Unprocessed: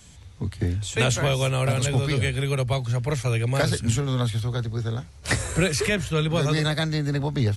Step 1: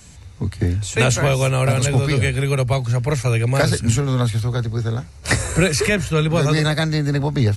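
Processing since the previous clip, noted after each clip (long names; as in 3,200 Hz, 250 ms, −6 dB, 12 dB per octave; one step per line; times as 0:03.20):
notch filter 3,300 Hz, Q 6.5
level +5.5 dB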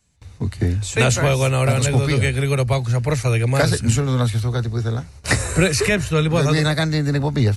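noise gate with hold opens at −33 dBFS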